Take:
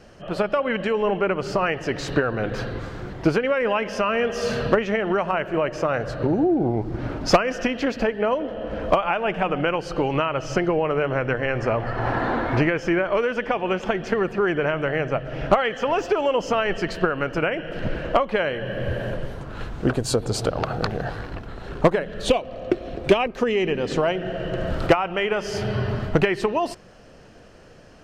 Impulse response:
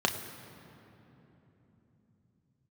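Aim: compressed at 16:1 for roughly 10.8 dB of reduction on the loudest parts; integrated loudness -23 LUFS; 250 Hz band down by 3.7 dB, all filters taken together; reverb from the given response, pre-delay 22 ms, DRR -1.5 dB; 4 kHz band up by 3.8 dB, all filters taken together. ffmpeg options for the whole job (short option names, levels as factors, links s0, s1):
-filter_complex "[0:a]equalizer=f=250:t=o:g=-5.5,equalizer=f=4000:t=o:g=5.5,acompressor=threshold=0.0708:ratio=16,asplit=2[s0][s1];[1:a]atrim=start_sample=2205,adelay=22[s2];[s1][s2]afir=irnorm=-1:irlink=0,volume=0.355[s3];[s0][s3]amix=inputs=2:normalize=0,volume=1.26"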